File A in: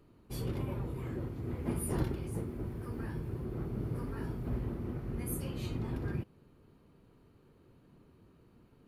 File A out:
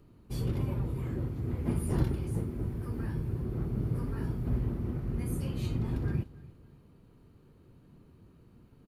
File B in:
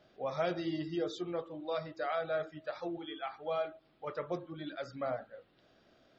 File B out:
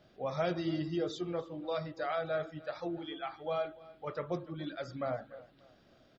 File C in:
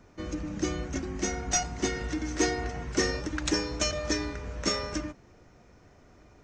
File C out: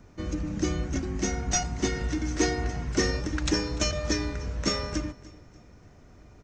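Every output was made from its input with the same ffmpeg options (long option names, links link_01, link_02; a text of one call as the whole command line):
ffmpeg -i in.wav -filter_complex "[0:a]acrossover=split=8100[link_01][link_02];[link_02]acompressor=threshold=-55dB:ratio=4:attack=1:release=60[link_03];[link_01][link_03]amix=inputs=2:normalize=0,bass=frequency=250:gain=6,treble=frequency=4000:gain=2,aecho=1:1:294|588|882:0.0944|0.034|0.0122" out.wav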